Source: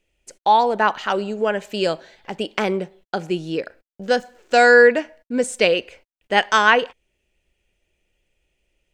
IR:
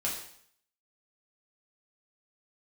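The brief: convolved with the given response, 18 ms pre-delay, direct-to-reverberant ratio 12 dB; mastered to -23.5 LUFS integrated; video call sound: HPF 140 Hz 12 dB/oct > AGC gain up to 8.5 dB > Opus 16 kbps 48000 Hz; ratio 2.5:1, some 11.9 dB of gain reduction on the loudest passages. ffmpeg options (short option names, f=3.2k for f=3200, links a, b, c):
-filter_complex "[0:a]acompressor=threshold=-27dB:ratio=2.5,asplit=2[a][b];[1:a]atrim=start_sample=2205,adelay=18[c];[b][c]afir=irnorm=-1:irlink=0,volume=-17dB[d];[a][d]amix=inputs=2:normalize=0,highpass=140,dynaudnorm=m=8.5dB,volume=5.5dB" -ar 48000 -c:a libopus -b:a 16k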